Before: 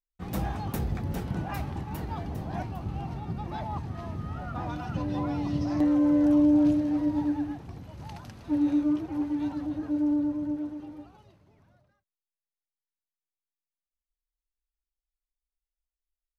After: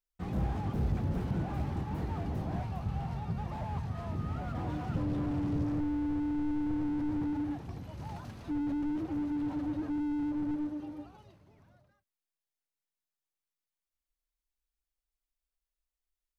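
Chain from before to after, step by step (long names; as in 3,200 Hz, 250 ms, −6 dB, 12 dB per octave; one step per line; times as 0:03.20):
0:02.58–0:04.11: parametric band 320 Hz −12 dB 0.56 octaves
slew-rate limiting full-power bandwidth 8.1 Hz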